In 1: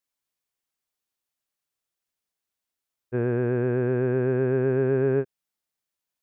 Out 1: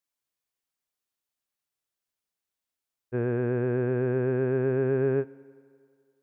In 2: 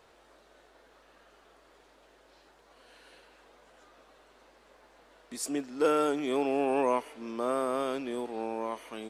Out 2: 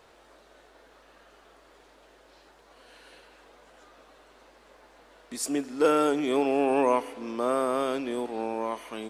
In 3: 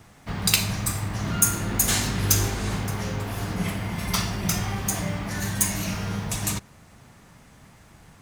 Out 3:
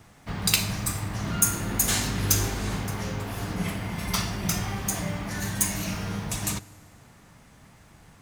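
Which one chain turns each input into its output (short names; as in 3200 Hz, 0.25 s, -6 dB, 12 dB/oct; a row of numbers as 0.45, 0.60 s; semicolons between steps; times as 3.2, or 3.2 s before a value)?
FDN reverb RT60 2.3 s, low-frequency decay 0.8×, high-frequency decay 0.8×, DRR 19.5 dB; match loudness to -27 LUFS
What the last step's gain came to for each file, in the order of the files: -2.5, +3.5, -2.0 dB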